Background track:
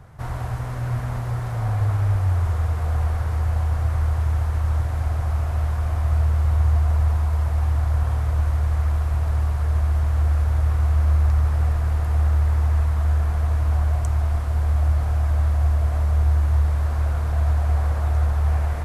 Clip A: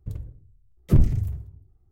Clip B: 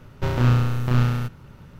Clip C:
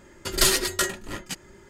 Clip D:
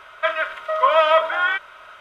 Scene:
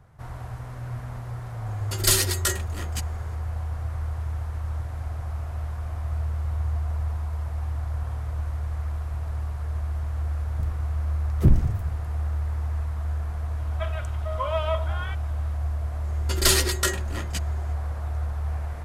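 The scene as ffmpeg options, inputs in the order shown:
-filter_complex "[3:a]asplit=2[s0][s1];[0:a]volume=0.376[s2];[s0]highshelf=f=6700:g=7.5[s3];[4:a]equalizer=f=1700:t=o:w=1.3:g=-10.5[s4];[s3]atrim=end=1.69,asetpts=PTS-STARTPTS,volume=0.668,afade=t=in:d=0.004:c=hsin,afade=t=out:st=1.686:d=0.004:c=hsin,adelay=1660[s5];[1:a]atrim=end=1.91,asetpts=PTS-STARTPTS,volume=0.891,afade=t=in:d=0.004:c=hsin,afade=t=out:st=1.906:d=0.004:c=hsin,adelay=10520[s6];[s4]atrim=end=2,asetpts=PTS-STARTPTS,volume=0.376,afade=t=in:d=0.004:c=hsin,afade=t=out:st=1.996:d=0.004:c=hsin,adelay=13570[s7];[s1]atrim=end=1.69,asetpts=PTS-STARTPTS,afade=t=in:d=0.004:c=hsin,afade=t=out:st=1.686:d=0.004:c=hsin,adelay=707364S[s8];[s2][s5][s6][s7][s8]amix=inputs=5:normalize=0"

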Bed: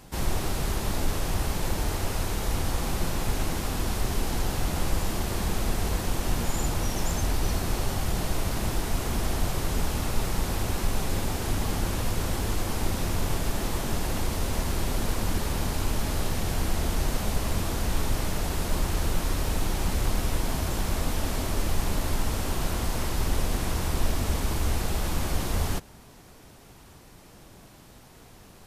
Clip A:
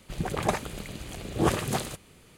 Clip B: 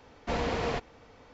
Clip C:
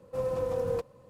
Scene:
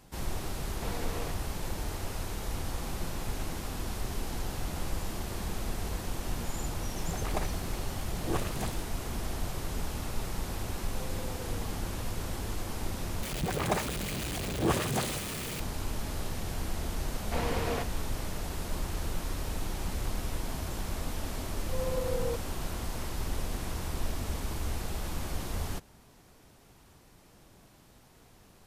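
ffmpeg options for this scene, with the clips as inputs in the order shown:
-filter_complex "[2:a]asplit=2[s0][s1];[1:a]asplit=2[s2][s3];[3:a]asplit=2[s4][s5];[0:a]volume=0.422[s6];[s3]aeval=exprs='val(0)+0.5*0.0531*sgn(val(0))':c=same[s7];[s5]dynaudnorm=f=140:g=3:m=4.47[s8];[s6]asplit=2[s9][s10];[s9]atrim=end=13.234[s11];[s7]atrim=end=2.37,asetpts=PTS-STARTPTS,volume=0.531[s12];[s10]atrim=start=15.596[s13];[s0]atrim=end=1.33,asetpts=PTS-STARTPTS,volume=0.335,afade=t=in:d=0.004:c=hsin,afade=t=out:st=1.326:d=0.004:c=hsin,adelay=530[s14];[s2]atrim=end=2.37,asetpts=PTS-STARTPTS,volume=0.355,afade=t=in:d=0.004:c=hsin,afade=t=out:st=2.366:d=0.004:c=hsin,adelay=6880[s15];[s4]atrim=end=1.09,asetpts=PTS-STARTPTS,volume=0.15,afade=t=in:d=0.004:c=hsin,afade=t=out:st=1.086:d=0.004:c=hsin,adelay=477162S[s16];[s1]atrim=end=1.33,asetpts=PTS-STARTPTS,volume=0.75,afade=t=in:d=0.004:c=hsin,afade=t=out:st=1.326:d=0.004:c=hsin,adelay=17040[s17];[s8]atrim=end=1.09,asetpts=PTS-STARTPTS,volume=0.15,afade=t=in:d=0.004:c=hsin,afade=t=out:st=1.086:d=0.004:c=hsin,adelay=21550[s18];[s11][s12]acrossfade=d=0.004:c1=hsin:c2=hsin[s19];[s19][s13]acrossfade=d=0.004:c1=hsin:c2=hsin[s20];[s20][s14][s15][s16][s17][s18]amix=inputs=6:normalize=0"

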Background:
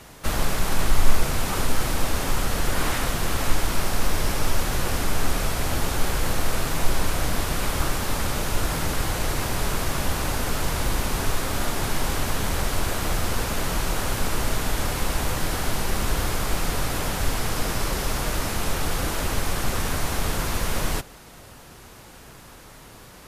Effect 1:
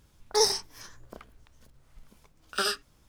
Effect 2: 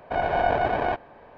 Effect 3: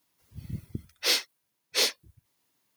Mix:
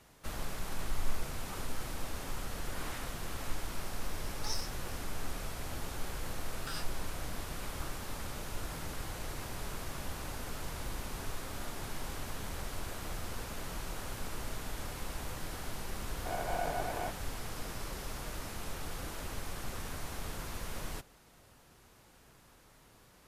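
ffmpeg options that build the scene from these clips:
-filter_complex "[0:a]volume=0.168[s0];[1:a]highpass=1000,atrim=end=3.08,asetpts=PTS-STARTPTS,volume=0.188,afade=t=in:d=0.004:c=hsin,afade=t=out:st=3.076:d=0.004:c=hsin,adelay=180369S[s1];[2:a]atrim=end=1.37,asetpts=PTS-STARTPTS,volume=0.211,afade=t=in:d=0.004:c=hsin,afade=t=out:st=1.366:d=0.004:c=hsin,adelay=16150[s2];[s0][s1][s2]amix=inputs=3:normalize=0"

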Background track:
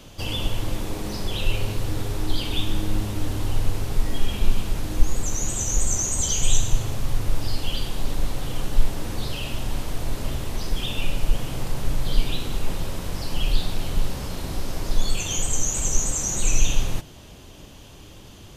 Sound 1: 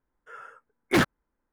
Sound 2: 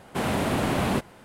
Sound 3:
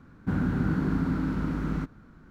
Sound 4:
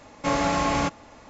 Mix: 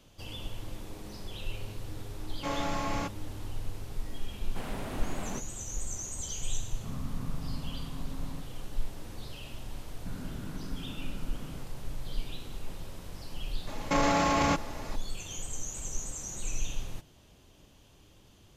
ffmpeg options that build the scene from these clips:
-filter_complex "[4:a]asplit=2[s0][s1];[3:a]asplit=2[s2][s3];[0:a]volume=0.2[s4];[s2]afreqshift=-320[s5];[s1]alimiter=level_in=12.6:limit=0.891:release=50:level=0:latency=1[s6];[s0]atrim=end=1.29,asetpts=PTS-STARTPTS,volume=0.316,afade=t=in:d=0.004:c=hsin,afade=t=out:st=1.286:d=0.004:c=hsin,adelay=2190[s7];[2:a]atrim=end=1.24,asetpts=PTS-STARTPTS,volume=0.2,afade=t=in:d=0.004:c=hsin,afade=t=out:st=1.236:d=0.004:c=hsin,adelay=4400[s8];[s5]atrim=end=2.3,asetpts=PTS-STARTPTS,volume=0.224,afade=t=in:d=0.004:c=hsin,afade=t=out:st=2.296:d=0.004:c=hsin,adelay=6560[s9];[s3]atrim=end=2.3,asetpts=PTS-STARTPTS,volume=0.158,afade=t=in:d=0.004:c=hsin,afade=t=out:st=2.296:d=0.004:c=hsin,adelay=431298S[s10];[s6]atrim=end=1.29,asetpts=PTS-STARTPTS,volume=0.15,afade=t=in:d=0.004:c=hsin,afade=t=out:st=1.286:d=0.004:c=hsin,adelay=13670[s11];[s4][s7][s8][s9][s10][s11]amix=inputs=6:normalize=0"

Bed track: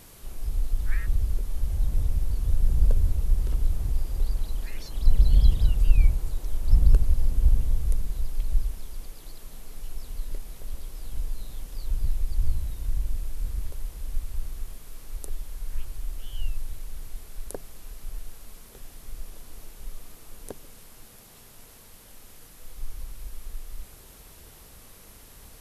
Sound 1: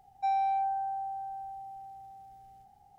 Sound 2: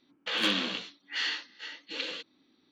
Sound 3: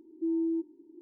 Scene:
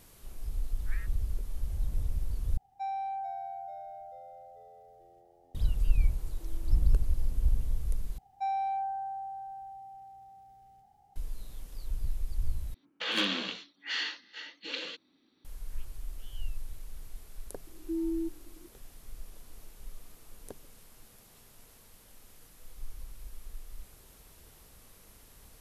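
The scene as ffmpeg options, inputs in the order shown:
-filter_complex "[1:a]asplit=2[s0][s1];[3:a]asplit=2[s2][s3];[0:a]volume=0.447[s4];[s0]asplit=7[s5][s6][s7][s8][s9][s10][s11];[s6]adelay=439,afreqshift=-86,volume=0.266[s12];[s7]adelay=878,afreqshift=-172,volume=0.138[s13];[s8]adelay=1317,afreqshift=-258,volume=0.0716[s14];[s9]adelay=1756,afreqshift=-344,volume=0.0376[s15];[s10]adelay=2195,afreqshift=-430,volume=0.0195[s16];[s11]adelay=2634,afreqshift=-516,volume=0.0101[s17];[s5][s12][s13][s14][s15][s16][s17]amix=inputs=7:normalize=0[s18];[s2]acompressor=threshold=0.00794:ratio=6:attack=3.2:release=140:knee=1:detection=peak[s19];[s4]asplit=4[s20][s21][s22][s23];[s20]atrim=end=2.574[s24];[s18]atrim=end=2.98,asetpts=PTS-STARTPTS,volume=0.473[s25];[s21]atrim=start=5.546:end=8.184[s26];[s1]atrim=end=2.98,asetpts=PTS-STARTPTS,volume=0.708[s27];[s22]atrim=start=11.156:end=12.744[s28];[2:a]atrim=end=2.71,asetpts=PTS-STARTPTS,volume=0.794[s29];[s23]atrim=start=15.446[s30];[s19]atrim=end=1.01,asetpts=PTS-STARTPTS,volume=0.211,afade=t=in:d=0.004:c=hsin,afade=t=out:st=1.006:d=0.004:c=hsin,adelay=6190[s31];[s3]atrim=end=1.01,asetpts=PTS-STARTPTS,volume=0.708,afade=t=in:d=0.004:c=hsin,afade=t=out:st=1.006:d=0.004:c=hsin,adelay=17670[s32];[s24][s25]acrossfade=d=0.004:c1=hsin:c2=hsin[s33];[s33][s26]acrossfade=d=0.004:c1=hsin:c2=hsin[s34];[s34][s27]acrossfade=d=0.004:c1=hsin:c2=hsin[s35];[s35][s28]acrossfade=d=0.004:c1=hsin:c2=hsin[s36];[s36][s29]acrossfade=d=0.004:c1=hsin:c2=hsin[s37];[s37][s30]acrossfade=d=0.004:c1=hsin:c2=hsin[s38];[s38][s31][s32]amix=inputs=3:normalize=0"

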